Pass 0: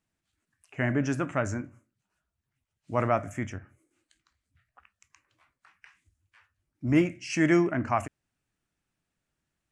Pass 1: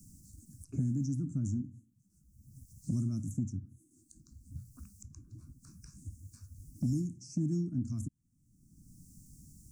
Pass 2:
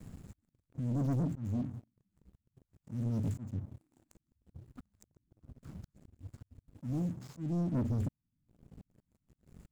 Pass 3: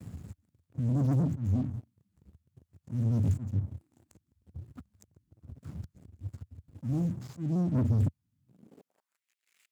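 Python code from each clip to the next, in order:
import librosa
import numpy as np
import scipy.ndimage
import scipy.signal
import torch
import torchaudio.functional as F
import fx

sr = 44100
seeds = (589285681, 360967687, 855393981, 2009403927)

y1 = scipy.signal.sosfilt(scipy.signal.cheby2(4, 40, [460.0, 3400.0], 'bandstop', fs=sr, output='sos'), x)
y1 = fx.peak_eq(y1, sr, hz=2900.0, db=-10.5, octaves=0.51)
y1 = fx.band_squash(y1, sr, depth_pct=100)
y2 = scipy.ndimage.median_filter(y1, 15, mode='constant')
y2 = fx.auto_swell(y2, sr, attack_ms=384.0)
y2 = fx.leveller(y2, sr, passes=3)
y2 = y2 * 10.0 ** (-2.5 / 20.0)
y3 = fx.filter_sweep_highpass(y2, sr, from_hz=82.0, to_hz=2300.0, start_s=8.37, end_s=9.26, q=2.3)
y3 = fx.vibrato_shape(y3, sr, shape='saw_down', rate_hz=4.5, depth_cents=100.0)
y3 = y3 * 10.0 ** (2.5 / 20.0)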